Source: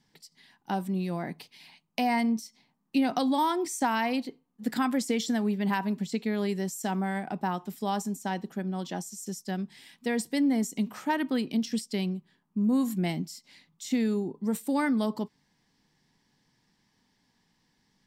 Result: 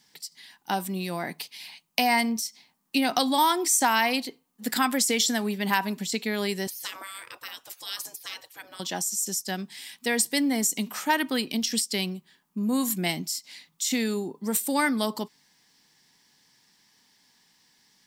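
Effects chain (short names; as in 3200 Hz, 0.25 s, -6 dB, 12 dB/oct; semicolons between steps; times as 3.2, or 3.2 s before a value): 6.67–8.8 spectral gate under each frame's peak -20 dB weak; tilt +3 dB/oct; gain +5 dB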